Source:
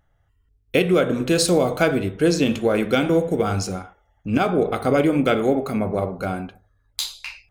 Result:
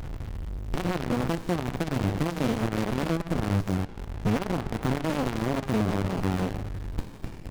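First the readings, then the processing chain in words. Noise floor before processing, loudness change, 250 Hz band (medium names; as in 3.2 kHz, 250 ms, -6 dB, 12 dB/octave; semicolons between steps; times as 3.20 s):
-65 dBFS, -8.0 dB, -6.5 dB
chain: compression, threshold -31 dBFS, peak gain reduction 16.5 dB; power-law waveshaper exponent 0.35; sliding maximum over 65 samples; trim -3 dB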